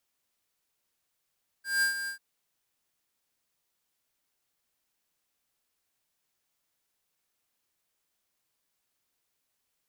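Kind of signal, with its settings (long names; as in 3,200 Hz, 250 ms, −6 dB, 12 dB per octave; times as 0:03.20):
note with an ADSR envelope square 1,600 Hz, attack 180 ms, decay 115 ms, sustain −10 dB, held 0.44 s, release 102 ms −24.5 dBFS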